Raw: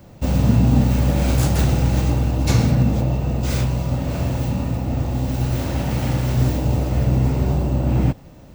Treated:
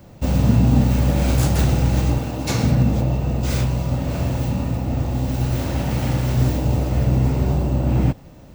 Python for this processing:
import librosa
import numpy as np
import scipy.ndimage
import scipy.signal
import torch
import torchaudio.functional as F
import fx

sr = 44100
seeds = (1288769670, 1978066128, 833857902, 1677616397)

y = fx.highpass(x, sr, hz=210.0, slope=6, at=(2.18, 2.63))